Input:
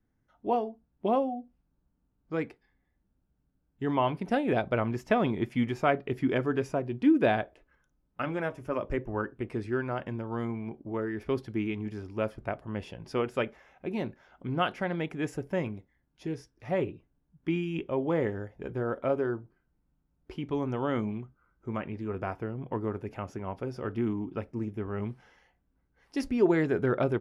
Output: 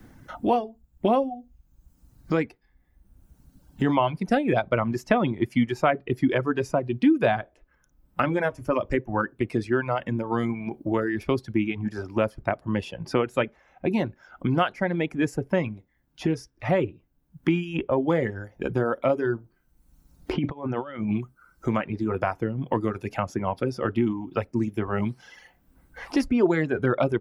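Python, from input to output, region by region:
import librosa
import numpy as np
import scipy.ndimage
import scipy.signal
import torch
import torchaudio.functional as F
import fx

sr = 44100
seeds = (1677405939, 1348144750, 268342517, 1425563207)

y = fx.chain(x, sr, fx.lowpass(hz=3500.0, slope=12),
    fx.over_compress(threshold_db=-37.0, ratio=-0.5), at=(20.33, 21.16))
y = fx.dereverb_blind(y, sr, rt60_s=1.5)
y = fx.notch(y, sr, hz=420.0, q=12.0)
y = fx.band_squash(y, sr, depth_pct=70)
y = F.gain(torch.from_numpy(y), 7.5).numpy()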